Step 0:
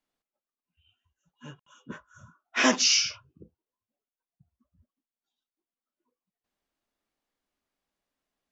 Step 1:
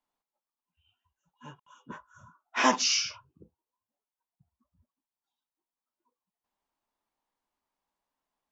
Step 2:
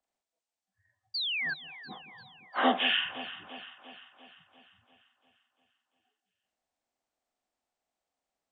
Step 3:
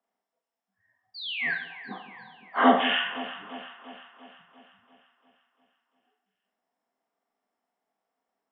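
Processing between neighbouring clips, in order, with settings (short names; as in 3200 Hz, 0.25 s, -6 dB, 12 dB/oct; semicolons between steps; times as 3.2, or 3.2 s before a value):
bell 930 Hz +12.5 dB 0.56 oct; gain -4.5 dB
inharmonic rescaling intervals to 80%; painted sound fall, 1.14–1.54, 1500–4800 Hz -32 dBFS; echo with dull and thin repeats by turns 0.173 s, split 1200 Hz, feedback 75%, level -12.5 dB
reverb RT60 0.60 s, pre-delay 3 ms, DRR 0.5 dB; gain -6 dB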